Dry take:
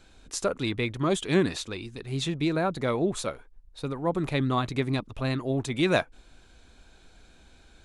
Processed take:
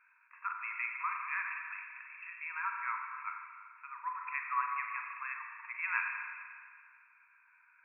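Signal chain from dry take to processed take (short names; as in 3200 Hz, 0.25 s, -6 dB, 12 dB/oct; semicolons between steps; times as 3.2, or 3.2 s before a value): brick-wall FIR band-pass 910–2700 Hz; spring tank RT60 2 s, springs 37/47 ms, chirp 80 ms, DRR 1.5 dB; gain -3 dB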